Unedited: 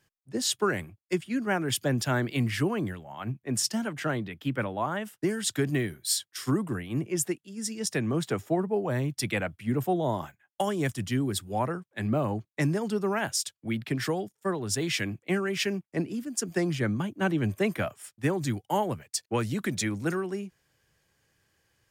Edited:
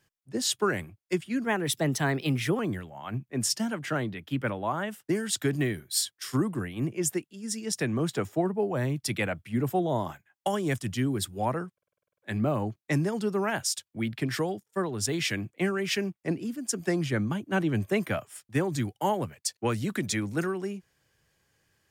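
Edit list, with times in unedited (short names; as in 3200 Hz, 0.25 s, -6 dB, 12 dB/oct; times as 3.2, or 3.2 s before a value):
1.44–2.73 speed 112%
11.87 stutter 0.05 s, 10 plays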